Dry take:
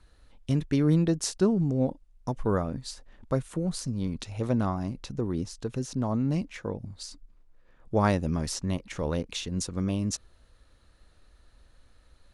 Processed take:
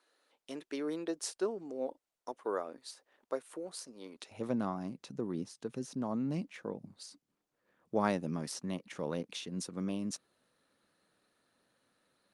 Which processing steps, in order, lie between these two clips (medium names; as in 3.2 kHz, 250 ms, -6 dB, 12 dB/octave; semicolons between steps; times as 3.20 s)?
high-pass 350 Hz 24 dB/octave, from 4.31 s 160 Hz; trim -6 dB; Opus 48 kbps 48 kHz